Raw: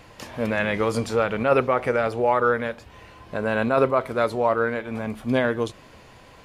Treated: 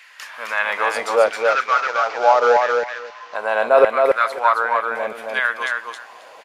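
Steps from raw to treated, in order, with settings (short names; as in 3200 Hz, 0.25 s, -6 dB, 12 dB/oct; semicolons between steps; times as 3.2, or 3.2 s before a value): 1.26–3.35 CVSD 32 kbps; LFO high-pass saw down 0.78 Hz 540–1900 Hz; feedback echo 0.269 s, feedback 17%, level -3.5 dB; gain +2.5 dB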